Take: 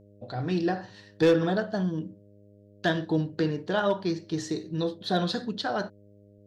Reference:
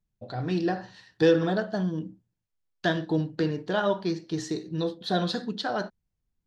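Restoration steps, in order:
clipped peaks rebuilt −14.5 dBFS
hum removal 101.9 Hz, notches 6

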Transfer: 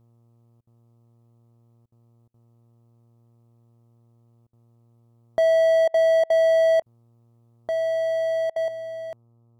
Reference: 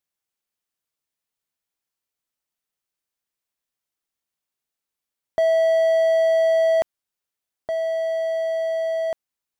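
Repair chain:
hum removal 116.9 Hz, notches 11
repair the gap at 0:00.61/0:01.86/0:02.28/0:04.47/0:05.88/0:06.24/0:06.80/0:08.50, 59 ms
level correction +9.5 dB, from 0:08.68

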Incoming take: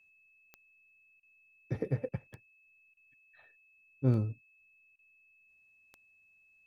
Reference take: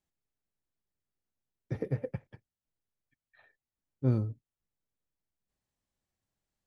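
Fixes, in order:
click removal
notch filter 2,600 Hz, Q 30
repair the gap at 0:01.20/0:02.09/0:02.94/0:04.96, 28 ms

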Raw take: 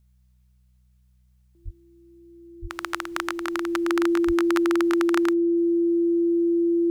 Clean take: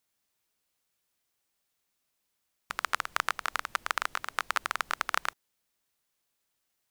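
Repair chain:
hum removal 62.2 Hz, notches 3
notch filter 340 Hz, Q 30
0:01.64–0:01.76: high-pass filter 140 Hz 24 dB per octave
0:02.61–0:02.73: high-pass filter 140 Hz 24 dB per octave
0:04.26–0:04.38: high-pass filter 140 Hz 24 dB per octave
level 0 dB, from 0:05.57 −7 dB

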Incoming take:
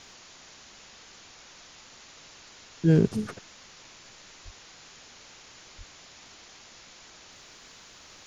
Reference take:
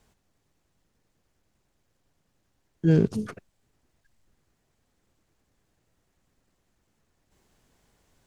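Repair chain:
0:04.44–0:04.56: high-pass filter 140 Hz 24 dB per octave
0:05.77–0:05.89: high-pass filter 140 Hz 24 dB per octave
noise reduction from a noise print 22 dB

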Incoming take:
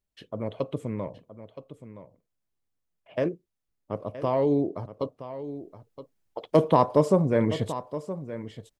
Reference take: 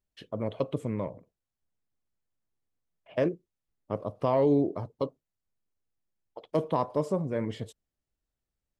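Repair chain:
echo removal 970 ms −13 dB
level 0 dB, from 0:05.42 −8 dB

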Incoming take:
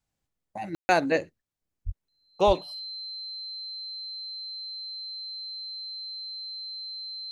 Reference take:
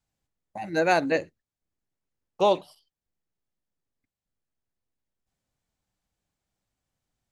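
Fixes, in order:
notch filter 4,100 Hz, Q 30
0:01.85–0:01.97: high-pass filter 140 Hz 24 dB per octave
0:02.46–0:02.58: high-pass filter 140 Hz 24 dB per octave
ambience match 0:00.75–0:00.89

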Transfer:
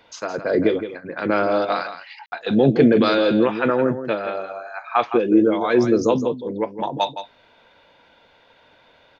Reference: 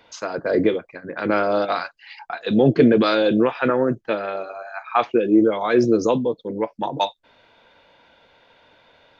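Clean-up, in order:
ambience match 0:02.26–0:02.32
echo removal 165 ms −10.5 dB

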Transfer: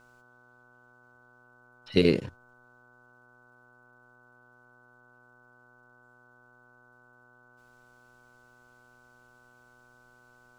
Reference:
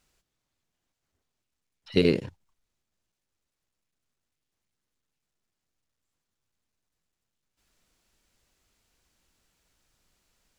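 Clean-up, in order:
hum removal 122.5 Hz, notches 11
notch filter 1,500 Hz, Q 30

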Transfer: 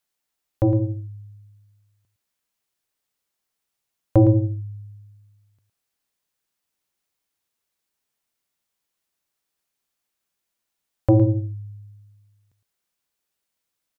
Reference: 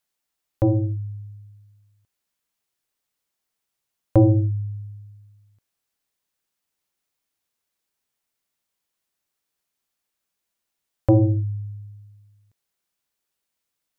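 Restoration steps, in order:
echo removal 111 ms −11 dB

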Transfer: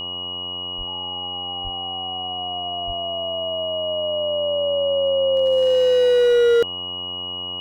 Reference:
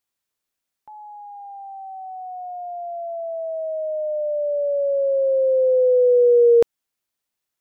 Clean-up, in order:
clipped peaks rebuilt −13 dBFS
hum removal 90.1 Hz, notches 13
notch filter 2,900 Hz, Q 30
0:00.77–0:00.89: high-pass filter 140 Hz 24 dB per octave
0:01.63–0:01.75: high-pass filter 140 Hz 24 dB per octave
0:02.86–0:02.98: high-pass filter 140 Hz 24 dB per octave

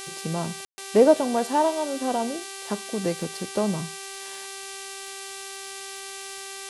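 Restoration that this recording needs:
click removal
hum removal 390.7 Hz, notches 28
ambience match 0:00.65–0:00.78
noise reduction from a noise print 30 dB

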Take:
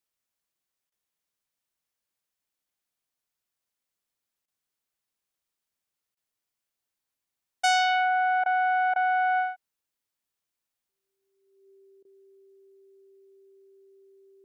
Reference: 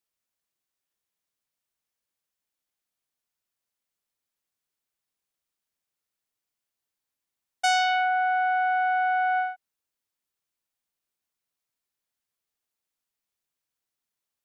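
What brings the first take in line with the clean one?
notch filter 390 Hz, Q 30
repair the gap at 0:00.90/0:04.46/0:06.15/0:08.44/0:08.94/0:12.03, 18 ms

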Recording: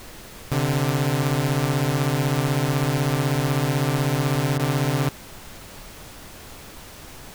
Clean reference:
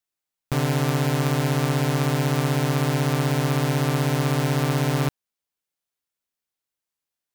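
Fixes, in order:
repair the gap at 0:04.58, 12 ms
noise reduction from a noise print 30 dB

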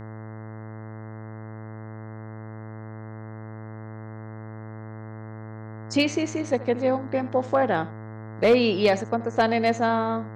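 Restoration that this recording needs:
clipped peaks rebuilt −11.5 dBFS
hum removal 109.5 Hz, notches 19
echo removal 78 ms −18 dB

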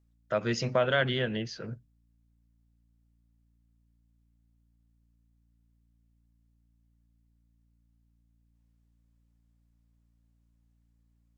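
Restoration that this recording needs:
hum removal 57.4 Hz, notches 5

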